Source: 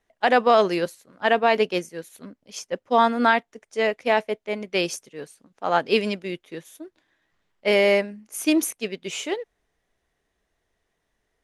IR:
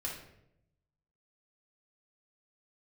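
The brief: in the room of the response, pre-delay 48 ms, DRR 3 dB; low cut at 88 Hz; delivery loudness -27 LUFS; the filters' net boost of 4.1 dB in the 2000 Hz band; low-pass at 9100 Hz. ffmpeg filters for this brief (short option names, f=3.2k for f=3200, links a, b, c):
-filter_complex "[0:a]highpass=88,lowpass=9.1k,equalizer=f=2k:t=o:g=5,asplit=2[a][b];[1:a]atrim=start_sample=2205,adelay=48[c];[b][c]afir=irnorm=-1:irlink=0,volume=-4.5dB[d];[a][d]amix=inputs=2:normalize=0,volume=-7.5dB"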